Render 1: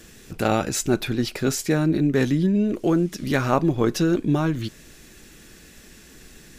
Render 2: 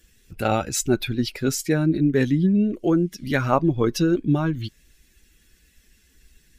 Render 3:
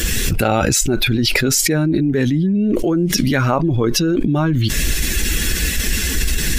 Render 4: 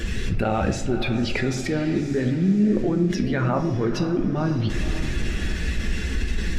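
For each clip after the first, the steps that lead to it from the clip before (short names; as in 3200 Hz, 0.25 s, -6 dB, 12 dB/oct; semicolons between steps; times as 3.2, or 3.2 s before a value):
per-bin expansion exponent 1.5; gain +2.5 dB
fast leveller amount 100%
tape spacing loss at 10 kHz 22 dB; diffused feedback echo 0.54 s, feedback 49%, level -10.5 dB; reverb RT60 0.80 s, pre-delay 3 ms, DRR 5.5 dB; gain -6 dB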